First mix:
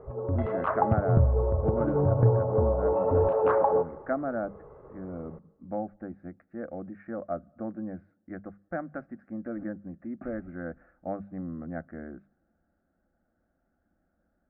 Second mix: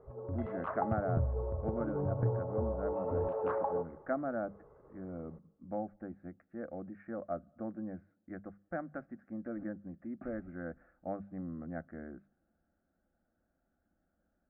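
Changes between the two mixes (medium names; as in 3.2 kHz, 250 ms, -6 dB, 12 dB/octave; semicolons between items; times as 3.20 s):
speech -5.0 dB; background -10.5 dB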